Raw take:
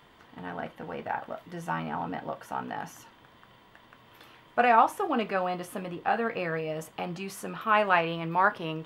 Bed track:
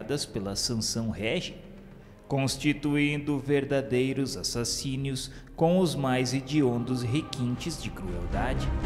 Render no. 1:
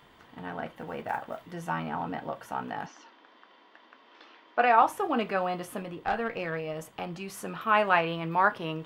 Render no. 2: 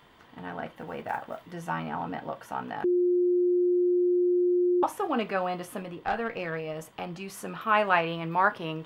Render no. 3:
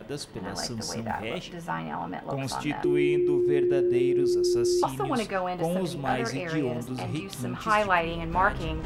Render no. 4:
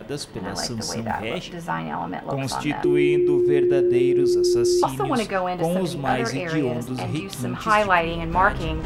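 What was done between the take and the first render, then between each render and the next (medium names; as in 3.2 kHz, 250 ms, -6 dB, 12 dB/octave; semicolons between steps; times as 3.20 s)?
0.74–1.53 s: block-companded coder 7-bit; 2.86–4.82 s: elliptic band-pass 270–5400 Hz; 5.82–7.34 s: valve stage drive 19 dB, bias 0.5
2.84–4.83 s: bleep 356 Hz -20.5 dBFS
add bed track -5 dB
trim +5 dB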